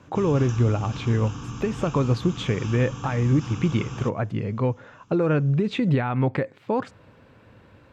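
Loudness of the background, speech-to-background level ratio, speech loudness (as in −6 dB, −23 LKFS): −35.0 LKFS, 10.5 dB, −24.5 LKFS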